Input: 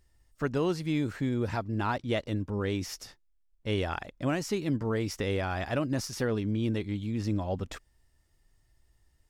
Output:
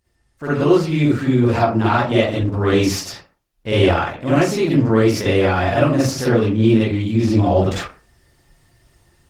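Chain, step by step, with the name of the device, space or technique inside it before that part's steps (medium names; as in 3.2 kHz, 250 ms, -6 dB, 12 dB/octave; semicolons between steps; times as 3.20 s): far-field microphone of a smart speaker (reverberation RT60 0.40 s, pre-delay 44 ms, DRR -8.5 dB; high-pass 100 Hz 6 dB/octave; level rider gain up to 12 dB; trim -1 dB; Opus 16 kbps 48 kHz)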